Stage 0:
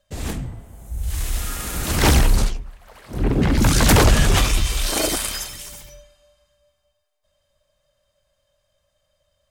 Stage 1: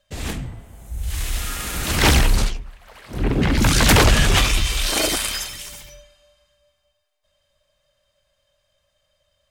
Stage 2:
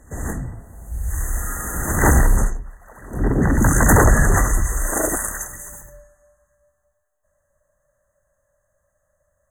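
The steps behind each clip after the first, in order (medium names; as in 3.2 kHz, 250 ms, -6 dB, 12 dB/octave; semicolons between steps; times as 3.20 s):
peaking EQ 2.7 kHz +5.5 dB 2 oct; trim -1 dB
brick-wall FIR band-stop 2–6.1 kHz; pre-echo 185 ms -21.5 dB; trim +1.5 dB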